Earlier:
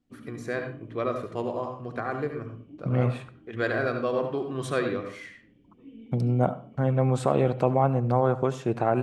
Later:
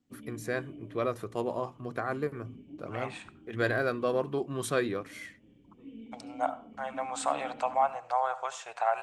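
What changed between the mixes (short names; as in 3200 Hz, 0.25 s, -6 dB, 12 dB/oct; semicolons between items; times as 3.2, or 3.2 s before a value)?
first voice: send off; second voice: add elliptic band-pass 730–8000 Hz, stop band 40 dB; master: remove air absorption 63 m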